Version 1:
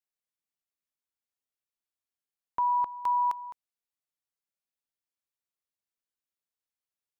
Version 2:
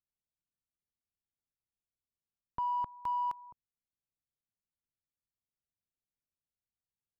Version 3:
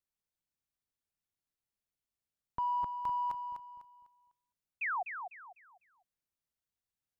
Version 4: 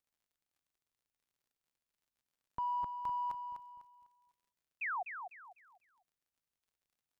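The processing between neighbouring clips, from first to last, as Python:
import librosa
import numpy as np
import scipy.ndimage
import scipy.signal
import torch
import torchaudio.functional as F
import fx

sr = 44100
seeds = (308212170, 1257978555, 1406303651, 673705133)

y1 = fx.wiener(x, sr, points=25)
y1 = fx.bass_treble(y1, sr, bass_db=15, treble_db=-3)
y1 = y1 * 10.0 ** (-6.5 / 20.0)
y2 = fx.spec_paint(y1, sr, seeds[0], shape='fall', start_s=4.81, length_s=0.22, low_hz=670.0, high_hz=2700.0, level_db=-34.0)
y2 = fx.echo_feedback(y2, sr, ms=250, feedback_pct=31, wet_db=-7.5)
y3 = fx.dmg_crackle(y2, sr, seeds[1], per_s=74.0, level_db=-65.0)
y3 = y3 * 10.0 ** (-3.0 / 20.0)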